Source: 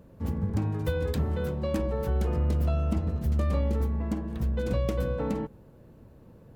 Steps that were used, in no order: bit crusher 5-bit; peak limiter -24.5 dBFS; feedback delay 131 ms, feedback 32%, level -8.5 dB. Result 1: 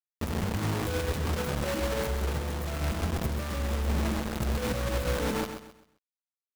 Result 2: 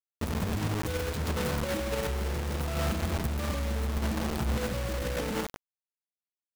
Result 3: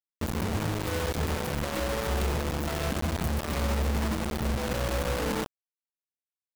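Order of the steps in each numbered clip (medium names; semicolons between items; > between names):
bit crusher > peak limiter > feedback delay; feedback delay > bit crusher > peak limiter; peak limiter > feedback delay > bit crusher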